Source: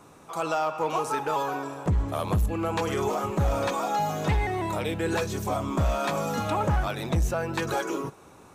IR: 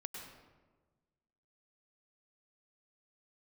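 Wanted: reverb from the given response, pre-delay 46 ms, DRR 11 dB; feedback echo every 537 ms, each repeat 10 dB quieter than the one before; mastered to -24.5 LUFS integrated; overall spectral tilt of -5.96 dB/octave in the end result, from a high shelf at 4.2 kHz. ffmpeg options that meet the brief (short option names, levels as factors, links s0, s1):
-filter_complex "[0:a]highshelf=f=4200:g=-7.5,aecho=1:1:537|1074|1611|2148:0.316|0.101|0.0324|0.0104,asplit=2[s0][s1];[1:a]atrim=start_sample=2205,adelay=46[s2];[s1][s2]afir=irnorm=-1:irlink=0,volume=0.355[s3];[s0][s3]amix=inputs=2:normalize=0,volume=1.41"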